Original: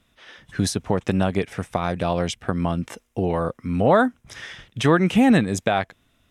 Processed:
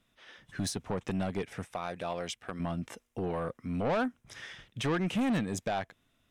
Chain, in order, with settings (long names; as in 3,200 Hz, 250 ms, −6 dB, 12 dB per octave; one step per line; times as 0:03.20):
0:01.65–0:02.60: low-shelf EQ 310 Hz −11 dB
soft clipping −17 dBFS, distortion −10 dB
parametric band 60 Hz −7.5 dB 0.7 octaves
level −8 dB